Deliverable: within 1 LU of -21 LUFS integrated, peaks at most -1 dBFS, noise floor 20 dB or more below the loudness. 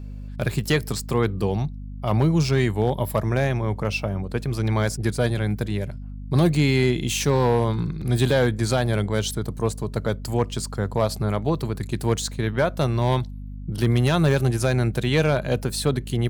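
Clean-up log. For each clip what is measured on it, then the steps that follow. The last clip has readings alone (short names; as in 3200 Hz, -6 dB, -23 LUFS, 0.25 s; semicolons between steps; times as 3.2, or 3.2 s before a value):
clipped 0.3%; flat tops at -10.5 dBFS; hum 50 Hz; harmonics up to 250 Hz; hum level -32 dBFS; loudness -23.0 LUFS; peak -10.5 dBFS; loudness target -21.0 LUFS
-> clip repair -10.5 dBFS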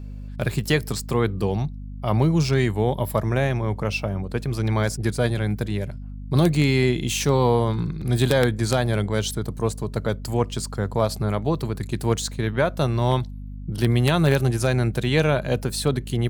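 clipped 0.0%; hum 50 Hz; harmonics up to 250 Hz; hum level -32 dBFS
-> de-hum 50 Hz, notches 5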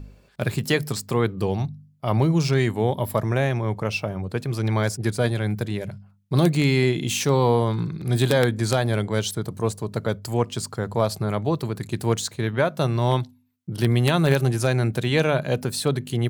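hum none; loudness -23.5 LUFS; peak -2.0 dBFS; loudness target -21.0 LUFS
-> gain +2.5 dB; limiter -1 dBFS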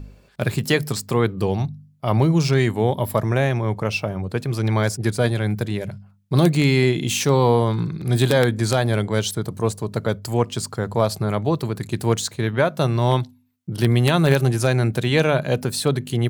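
loudness -21.0 LUFS; peak -1.0 dBFS; noise floor -53 dBFS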